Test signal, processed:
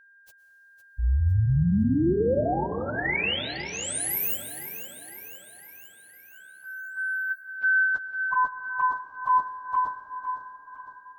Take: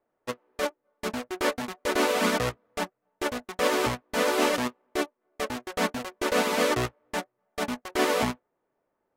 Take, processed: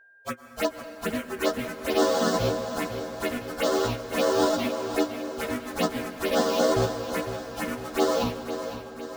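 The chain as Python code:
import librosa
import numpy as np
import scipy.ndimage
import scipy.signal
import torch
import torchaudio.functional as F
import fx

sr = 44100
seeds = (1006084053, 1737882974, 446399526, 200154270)

y = fx.partial_stretch(x, sr, pct=110)
y = fx.rider(y, sr, range_db=3, speed_s=2.0)
y = fx.env_phaser(y, sr, low_hz=240.0, high_hz=2400.0, full_db=-23.0)
y = y + 10.0 ** (-58.0 / 20.0) * np.sin(2.0 * np.pi * 1600.0 * np.arange(len(y)) / sr)
y = fx.echo_feedback(y, sr, ms=507, feedback_pct=57, wet_db=-11)
y = fx.rev_plate(y, sr, seeds[0], rt60_s=4.6, hf_ratio=0.5, predelay_ms=95, drr_db=10.5)
y = y * 10.0 ** (4.5 / 20.0)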